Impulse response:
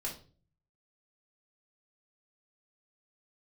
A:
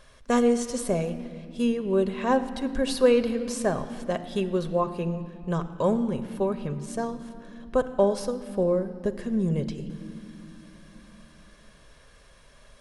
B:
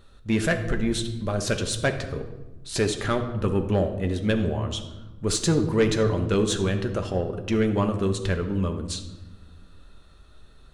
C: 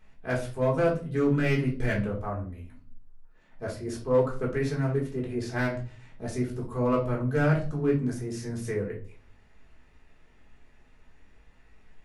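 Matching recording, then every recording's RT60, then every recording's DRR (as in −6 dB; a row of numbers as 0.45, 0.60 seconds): C; 2.7, 1.2, 0.40 seconds; 8.5, 5.0, −3.0 decibels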